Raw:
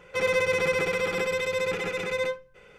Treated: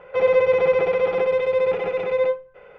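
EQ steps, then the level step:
drawn EQ curve 300 Hz 0 dB, 600 Hz +14 dB, 3,200 Hz −1 dB, 8,600 Hz −23 dB
dynamic equaliser 1,500 Hz, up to −7 dB, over −37 dBFS, Q 1.5
high-shelf EQ 9,900 Hz −9 dB
−1.5 dB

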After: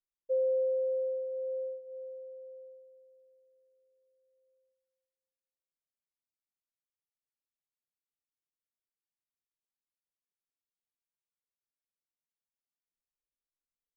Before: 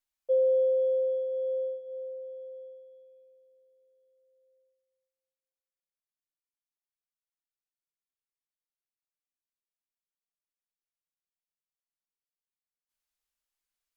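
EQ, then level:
Butterworth low-pass 560 Hz 96 dB per octave
mains-hum notches 60/120/180/240 Hz
−4.5 dB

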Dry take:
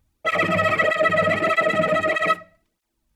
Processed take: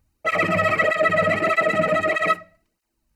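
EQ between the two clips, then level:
Butterworth band-reject 3,400 Hz, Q 7.6
0.0 dB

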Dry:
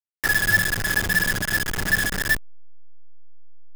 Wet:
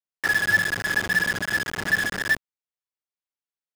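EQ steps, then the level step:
high-pass filter 230 Hz 6 dB per octave
high-shelf EQ 7,300 Hz −12 dB
parametric band 16,000 Hz −7 dB 0.2 octaves
0.0 dB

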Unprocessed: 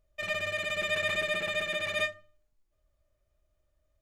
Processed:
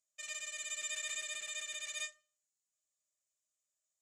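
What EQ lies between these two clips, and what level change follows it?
resonant band-pass 7,300 Hz, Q 4.5
+10.5 dB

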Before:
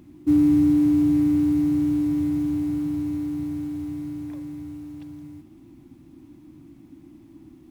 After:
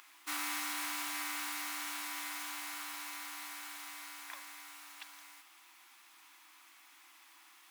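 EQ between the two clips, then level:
high-pass filter 1,100 Hz 24 dB per octave
+10.5 dB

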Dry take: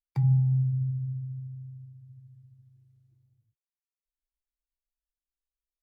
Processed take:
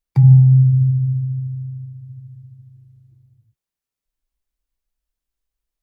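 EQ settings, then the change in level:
low-shelf EQ 330 Hz +8 dB
+7.0 dB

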